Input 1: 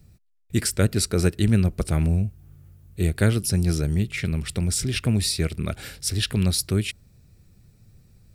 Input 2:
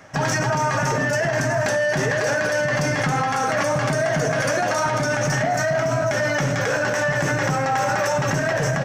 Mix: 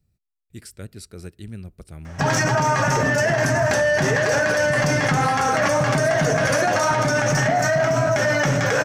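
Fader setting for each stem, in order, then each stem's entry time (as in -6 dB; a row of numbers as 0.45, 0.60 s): -16.5, +2.0 dB; 0.00, 2.05 s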